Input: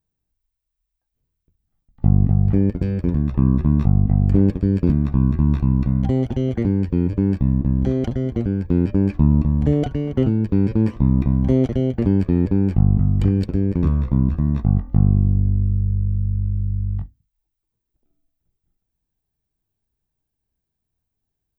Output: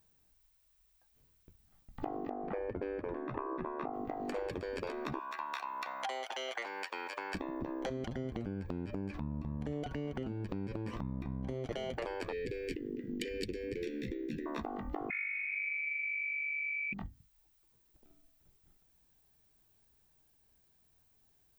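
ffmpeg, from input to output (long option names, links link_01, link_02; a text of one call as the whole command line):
ffmpeg -i in.wav -filter_complex "[0:a]asplit=3[link_01][link_02][link_03];[link_01]afade=type=out:start_time=2.29:duration=0.02[link_04];[link_02]lowpass=1700,afade=type=in:start_time=2.29:duration=0.02,afade=type=out:start_time=3.92:duration=0.02[link_05];[link_03]afade=type=in:start_time=3.92:duration=0.02[link_06];[link_04][link_05][link_06]amix=inputs=3:normalize=0,asettb=1/sr,asplit=3[link_07][link_08][link_09];[link_07]atrim=end=5.194[link_10];[link_08]atrim=start=5.19:end=7.35,asetpts=PTS-STARTPTS,afade=type=in:duration=0.004:curve=qsin,afade=type=out:start_time=2.156:duration=0.004:curve=qsin,highpass=frequency=750:width=0.5412,highpass=frequency=750:width=1.3066[link_11];[link_09]atrim=start=7.346[link_12];[link_10][link_11]acrossfade=duration=0.004:curve1=hsin:curve2=qsin[link_13];[link_13][link_12]acrossfade=duration=0.004:curve1=qsin:curve2=hsin,asettb=1/sr,asplit=3[link_14][link_15][link_16];[link_14]atrim=end=7.894[link_17];[link_15]atrim=start=7.89:end=11.71,asetpts=PTS-STARTPTS,afade=type=in:duration=0.004:curve=qsin,afade=type=out:start_time=3.816:duration=0.004:curve=qsin,acompressor=threshold=-26dB:ratio=10:attack=3.2:release=140:knee=1:detection=peak[link_18];[link_16]atrim=start=11.706[link_19];[link_17][link_18]acrossfade=duration=0.004:curve1=hsin:curve2=qsin[link_20];[link_20][link_19]acrossfade=duration=0.004:curve1=qsin:curve2=hsin,asettb=1/sr,asplit=3[link_21][link_22][link_23];[link_21]atrim=end=12.324[link_24];[link_22]atrim=start=12.32:end=14.46,asetpts=PTS-STARTPTS,afade=type=in:duration=0.004:curve=qsin,afade=type=out:start_time=2.136:duration=0.004:curve=qsin,asuperstop=centerf=920:order=12:qfactor=0.72[link_25];[link_23]atrim=start=14.456[link_26];[link_24][link_25]acrossfade=duration=0.004:curve1=hsin:curve2=qsin[link_27];[link_27][link_26]acrossfade=duration=0.004:curve1=qsin:curve2=hsin,asettb=1/sr,asplit=3[link_28][link_29][link_30];[link_28]atrim=end=15.104[link_31];[link_29]atrim=start=15.1:end=16.93,asetpts=PTS-STARTPTS,afade=type=in:duration=0.004:curve=qsin,afade=type=out:start_time=1.826:duration=0.004:curve=qsin,lowpass=frequency=2100:width_type=q:width=0.5098,lowpass=frequency=2100:width_type=q:width=0.6013,lowpass=frequency=2100:width_type=q:width=0.9,lowpass=frequency=2100:width_type=q:width=2.563,afreqshift=-2500[link_32];[link_30]atrim=start=16.926[link_33];[link_31][link_32]acrossfade=duration=0.004:curve1=hsin:curve2=qsin[link_34];[link_34][link_33]acrossfade=duration=0.004:curve1=qsin:curve2=hsin,afftfilt=real='re*lt(hypot(re,im),0.316)':imag='im*lt(hypot(re,im),0.316)':win_size=1024:overlap=0.75,lowshelf=frequency=340:gain=-10,acompressor=threshold=-50dB:ratio=4,volume=12.5dB" out.wav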